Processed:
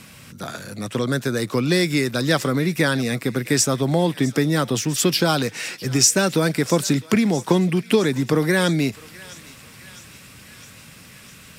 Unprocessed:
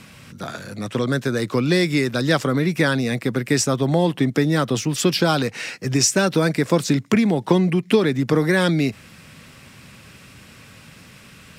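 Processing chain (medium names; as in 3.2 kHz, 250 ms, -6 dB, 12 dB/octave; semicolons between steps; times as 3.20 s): treble shelf 7.3 kHz +9.5 dB; on a send: thinning echo 656 ms, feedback 74%, high-pass 1.1 kHz, level -18.5 dB; on the sum: trim -1 dB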